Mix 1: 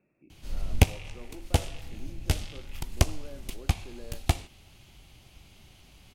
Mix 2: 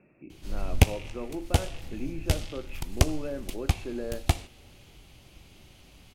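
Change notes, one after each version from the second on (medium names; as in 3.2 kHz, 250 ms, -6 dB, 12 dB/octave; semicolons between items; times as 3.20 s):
speech +10.5 dB; reverb: on, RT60 2.7 s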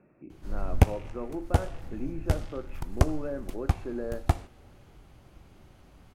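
master: add resonant high shelf 2 kHz -9 dB, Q 1.5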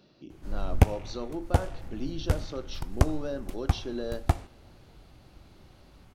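speech: remove Chebyshev low-pass 2.6 kHz, order 10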